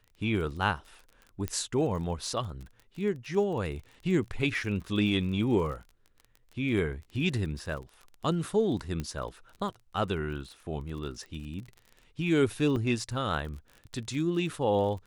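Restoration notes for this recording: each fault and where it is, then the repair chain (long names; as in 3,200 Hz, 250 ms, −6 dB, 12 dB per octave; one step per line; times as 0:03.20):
surface crackle 34 per second −39 dBFS
0:01.48: click −17 dBFS
0:09.00: click −21 dBFS
0:12.76: drop-out 4.8 ms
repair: click removal
repair the gap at 0:12.76, 4.8 ms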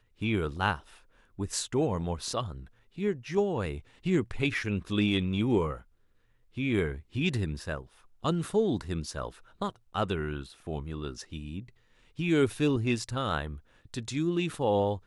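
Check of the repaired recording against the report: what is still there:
0:09.00: click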